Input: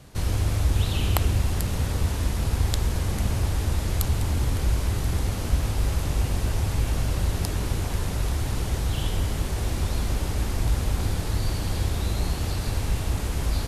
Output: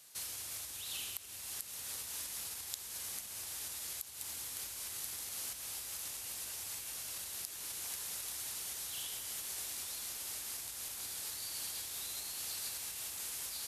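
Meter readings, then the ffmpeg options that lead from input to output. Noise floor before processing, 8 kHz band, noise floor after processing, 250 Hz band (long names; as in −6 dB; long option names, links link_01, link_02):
−29 dBFS, −1.5 dB, −47 dBFS, −31.5 dB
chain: -af "acompressor=threshold=-23dB:ratio=6,aderivative,alimiter=limit=-21dB:level=0:latency=1:release=283,volume=1dB"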